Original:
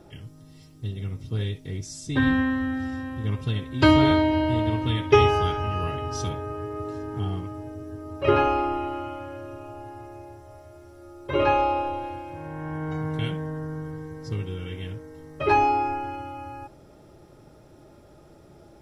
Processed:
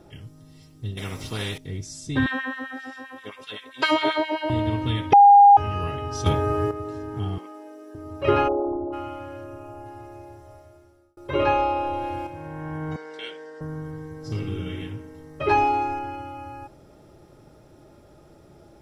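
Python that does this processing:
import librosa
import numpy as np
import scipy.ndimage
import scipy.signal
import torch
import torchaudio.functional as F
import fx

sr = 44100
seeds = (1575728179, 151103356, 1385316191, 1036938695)

y = fx.spectral_comp(x, sr, ratio=2.0, at=(0.97, 1.58))
y = fx.filter_lfo_highpass(y, sr, shape='sine', hz=7.6, low_hz=390.0, high_hz=2300.0, q=1.3, at=(2.26, 4.5))
y = fx.bessel_highpass(y, sr, hz=420.0, order=8, at=(7.38, 7.95))
y = fx.envelope_sharpen(y, sr, power=3.0, at=(8.47, 8.92), fade=0.02)
y = fx.peak_eq(y, sr, hz=3700.0, db=-6.5, octaves=0.86, at=(9.44, 9.86))
y = fx.env_flatten(y, sr, amount_pct=50, at=(11.76, 12.27))
y = fx.cabinet(y, sr, low_hz=430.0, low_slope=24, high_hz=8800.0, hz=(700.0, 1100.0, 4800.0), db=(-10, -9, 9), at=(12.96, 13.61))
y = fx.reverb_throw(y, sr, start_s=14.17, length_s=0.62, rt60_s=1.0, drr_db=0.0)
y = fx.echo_wet_highpass(y, sr, ms=81, feedback_pct=70, hz=5500.0, wet_db=-3.5, at=(15.4, 15.99))
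y = fx.edit(y, sr, fx.bleep(start_s=5.13, length_s=0.44, hz=810.0, db=-7.5),
    fx.clip_gain(start_s=6.26, length_s=0.45, db=9.5),
    fx.fade_out_span(start_s=10.49, length_s=0.68), tone=tone)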